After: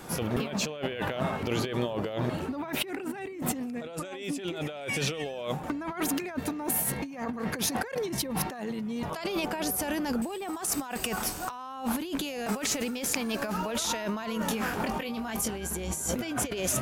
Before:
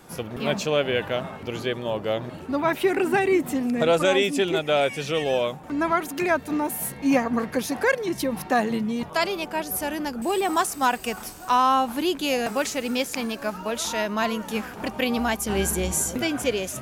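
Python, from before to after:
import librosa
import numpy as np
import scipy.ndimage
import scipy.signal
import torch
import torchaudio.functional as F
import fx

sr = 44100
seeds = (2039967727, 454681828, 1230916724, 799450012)

y = fx.over_compress(x, sr, threshold_db=-32.0, ratio=-1.0)
y = fx.doubler(y, sr, ms=22.0, db=-6.5, at=(14.37, 15.51))
y = y * librosa.db_to_amplitude(-1.0)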